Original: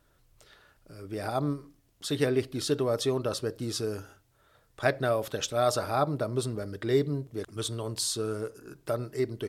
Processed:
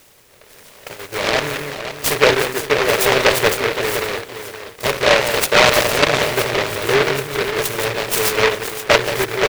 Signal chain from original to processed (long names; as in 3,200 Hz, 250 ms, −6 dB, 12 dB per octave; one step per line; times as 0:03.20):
compressor on every frequency bin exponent 0.6
on a send: single-tap delay 179 ms −3 dB
on the sum: auto-filter low-pass sine 2.1 Hz 620–7,200 Hz
octave-band graphic EQ 250/500/2,000/4,000 Hz −10/+11/−9/+11 dB
bit-depth reduction 6 bits, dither triangular
rotating-speaker cabinet horn 0.85 Hz, later 7.5 Hz, at 0:06.16
noise gate −29 dBFS, range −11 dB
repeating echo 518 ms, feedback 19%, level −10 dB
short delay modulated by noise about 1,500 Hz, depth 0.27 ms
level +2.5 dB